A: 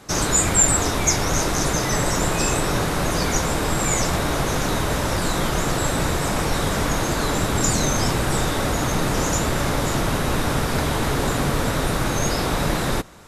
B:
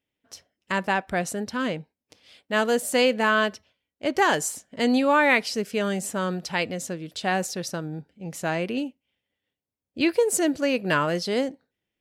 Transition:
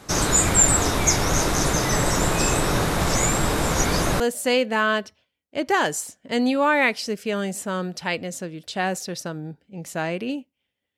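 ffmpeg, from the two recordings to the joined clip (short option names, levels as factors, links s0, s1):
-filter_complex "[0:a]apad=whole_dur=10.97,atrim=end=10.97,asplit=2[s0][s1];[s0]atrim=end=2.972[s2];[s1]atrim=start=2.968:end=4.202,asetpts=PTS-STARTPTS,areverse[s3];[1:a]atrim=start=2.678:end=9.45[s4];[s2][s3]acrossfade=d=0.004:c1=hsin:c2=hsin[s5];[s5][s4]acrossfade=d=0.004:c1=hsin:c2=hsin"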